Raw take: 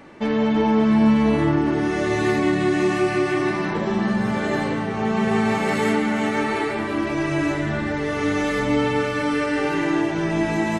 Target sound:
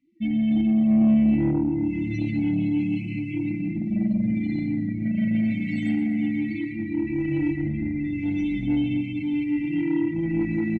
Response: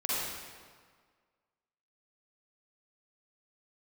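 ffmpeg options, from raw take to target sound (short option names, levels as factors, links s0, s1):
-filter_complex "[0:a]afftdn=nr=32:nf=-28,afftfilt=real='re*(1-between(b*sr/4096,350,1900))':imag='im*(1-between(b*sr/4096,350,1900))':win_size=4096:overlap=0.75,adynamicequalizer=threshold=0.00631:dfrequency=2100:dqfactor=1.2:tfrequency=2100:tqfactor=1.2:attack=5:release=100:ratio=0.375:range=3.5:mode=cutabove:tftype=bell,asoftclip=type=tanh:threshold=0.178,asplit=2[s0][s1];[s1]aecho=0:1:119|238|357|476|595:0.188|0.0998|0.0529|0.028|0.0149[s2];[s0][s2]amix=inputs=2:normalize=0"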